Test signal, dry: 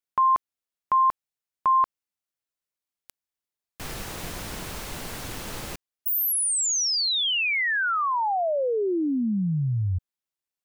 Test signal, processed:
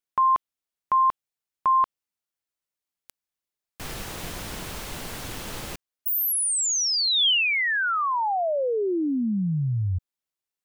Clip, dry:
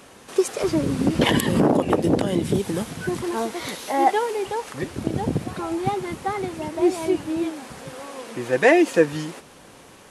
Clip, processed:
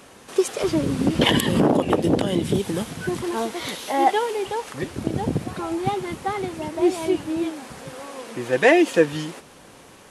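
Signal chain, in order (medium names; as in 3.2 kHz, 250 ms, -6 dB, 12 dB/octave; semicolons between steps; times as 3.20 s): dynamic bell 3.2 kHz, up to +5 dB, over -45 dBFS, Q 2.8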